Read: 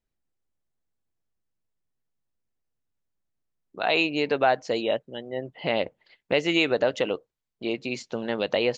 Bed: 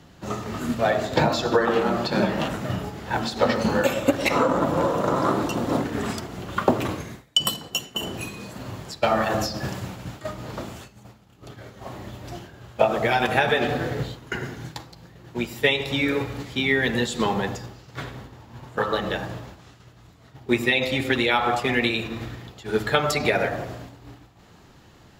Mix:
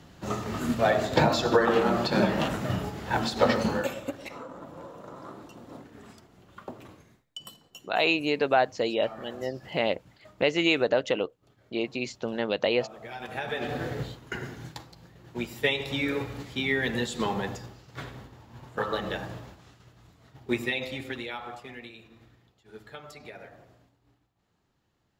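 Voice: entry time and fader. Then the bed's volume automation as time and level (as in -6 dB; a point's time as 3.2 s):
4.10 s, -1.0 dB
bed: 3.55 s -1.5 dB
4.39 s -21.5 dB
12.99 s -21.5 dB
13.82 s -5.5 dB
20.45 s -5.5 dB
21.92 s -23 dB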